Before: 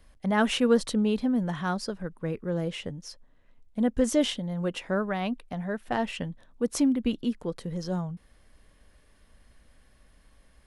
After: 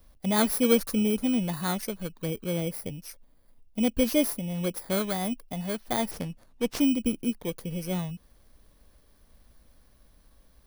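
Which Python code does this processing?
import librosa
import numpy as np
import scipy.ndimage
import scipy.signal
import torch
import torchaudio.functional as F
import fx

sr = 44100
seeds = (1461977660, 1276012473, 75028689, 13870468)

y = fx.bit_reversed(x, sr, seeds[0], block=16)
y = fx.running_max(y, sr, window=3, at=(6.11, 6.81))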